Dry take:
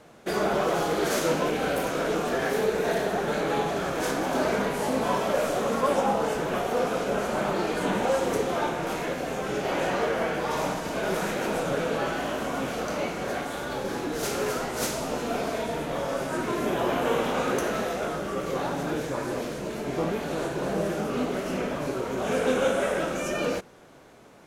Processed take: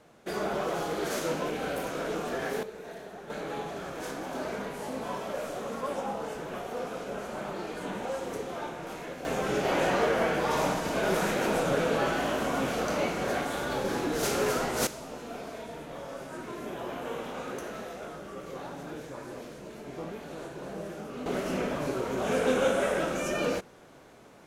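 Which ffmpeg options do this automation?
-af "asetnsamples=n=441:p=0,asendcmd='2.63 volume volume -17dB;3.3 volume volume -9.5dB;9.25 volume volume 0.5dB;14.87 volume volume -11dB;21.26 volume volume -1.5dB',volume=-6dB"

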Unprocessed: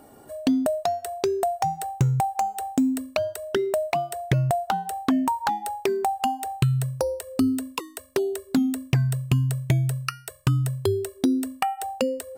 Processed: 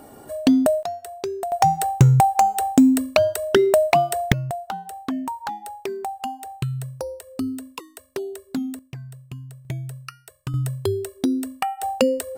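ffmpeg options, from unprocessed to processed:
-af "asetnsamples=n=441:p=0,asendcmd='0.83 volume volume -4dB;1.52 volume volume 8dB;4.32 volume volume -5dB;8.79 volume volume -15dB;9.65 volume volume -8.5dB;10.54 volume volume 0dB;11.83 volume volume 6dB',volume=5.5dB"

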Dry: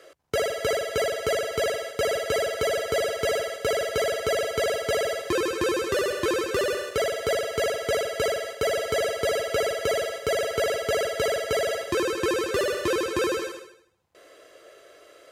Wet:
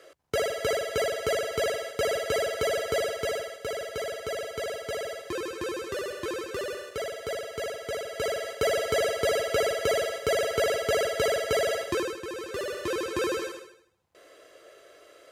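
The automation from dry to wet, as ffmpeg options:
-af "volume=16.5dB,afade=t=out:st=2.93:d=0.65:silence=0.501187,afade=t=in:st=8.04:d=0.55:silence=0.421697,afade=t=out:st=11.83:d=0.4:silence=0.237137,afade=t=in:st=12.23:d=1.22:silence=0.281838"

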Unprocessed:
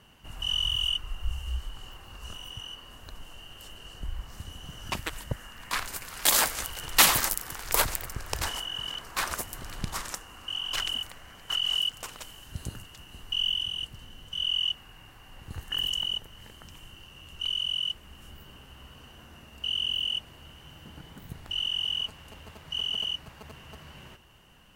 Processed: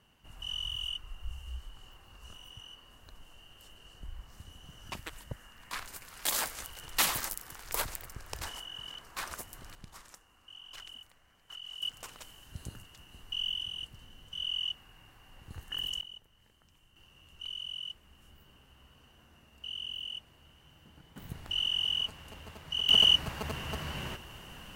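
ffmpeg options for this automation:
-af "asetnsamples=n=441:p=0,asendcmd='9.75 volume volume -17.5dB;11.82 volume volume -6.5dB;16.01 volume volume -17.5dB;16.96 volume volume -10.5dB;21.16 volume volume -1dB;22.89 volume volume 9.5dB',volume=-9dB"

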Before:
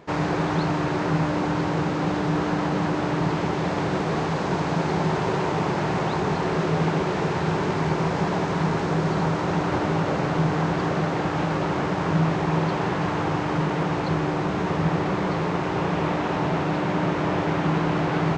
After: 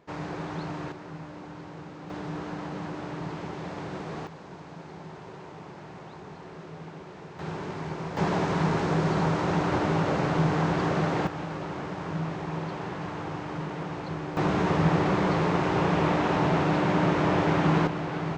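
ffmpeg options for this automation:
-af "asetnsamples=n=441:p=0,asendcmd='0.92 volume volume -18dB;2.1 volume volume -11.5dB;4.27 volume volume -19.5dB;7.39 volume volume -11dB;8.17 volume volume -2dB;11.27 volume volume -10dB;14.37 volume volume 0dB;17.87 volume volume -8dB',volume=-11dB"

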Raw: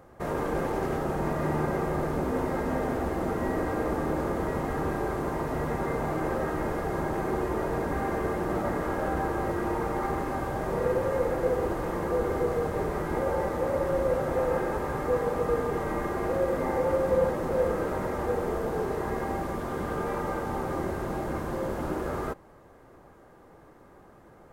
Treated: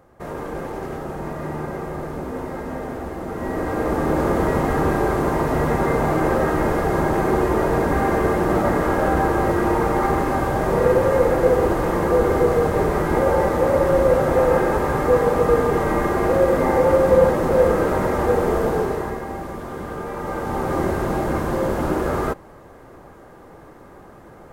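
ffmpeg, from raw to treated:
-af "volume=18.5dB,afade=t=in:st=3.27:d=1.07:silence=0.298538,afade=t=out:st=18.66:d=0.55:silence=0.354813,afade=t=in:st=20.14:d=0.69:silence=0.375837"

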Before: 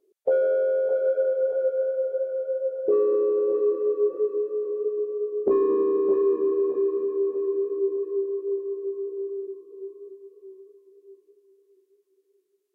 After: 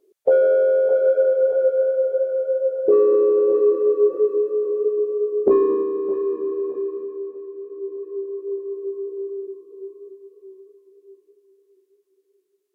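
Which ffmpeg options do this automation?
-af "volume=18dB,afade=t=out:st=5.49:d=0.4:silence=0.421697,afade=t=out:st=6.76:d=0.76:silence=0.375837,afade=t=in:st=7.52:d=1.36:silence=0.251189"

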